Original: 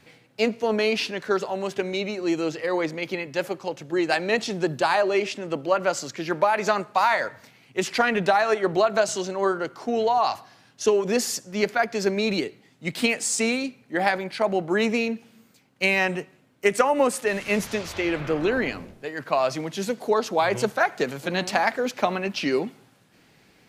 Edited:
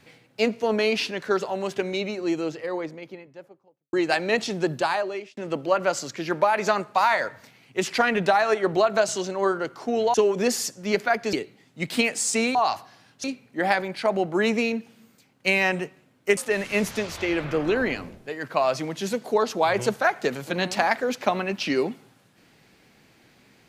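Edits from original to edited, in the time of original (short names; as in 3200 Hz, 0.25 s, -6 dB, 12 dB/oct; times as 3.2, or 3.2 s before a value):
1.85–3.93 studio fade out
4.72–5.37 fade out
10.14–10.83 move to 13.6
12.02–12.38 cut
16.73–17.13 cut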